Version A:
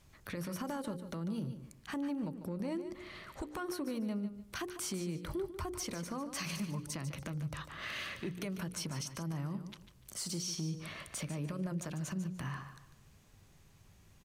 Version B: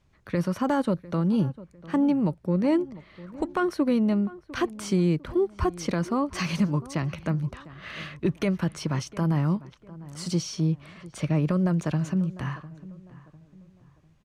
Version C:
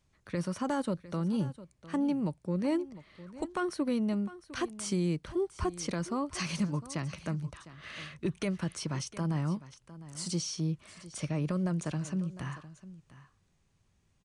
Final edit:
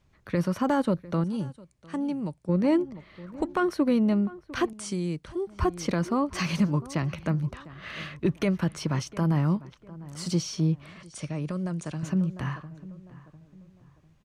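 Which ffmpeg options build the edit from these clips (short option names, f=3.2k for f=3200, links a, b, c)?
-filter_complex "[2:a]asplit=3[a][b][c];[1:a]asplit=4[d][e][f][g];[d]atrim=end=1.242[h];[a]atrim=start=1.238:end=2.492[i];[e]atrim=start=2.488:end=4.732[j];[b]atrim=start=4.728:end=5.472[k];[f]atrim=start=5.468:end=11.032[l];[c]atrim=start=11.028:end=12.032[m];[g]atrim=start=12.028[n];[h][i]acrossfade=d=0.004:c1=hsin:c2=hsin[o];[o][j]acrossfade=d=0.004:c1=hsin:c2=hsin[p];[p][k]acrossfade=d=0.004:c1=hsin:c2=hsin[q];[q][l]acrossfade=d=0.004:c1=hsin:c2=hsin[r];[r][m]acrossfade=d=0.004:c1=hsin:c2=hsin[s];[s][n]acrossfade=d=0.004:c1=hsin:c2=hsin"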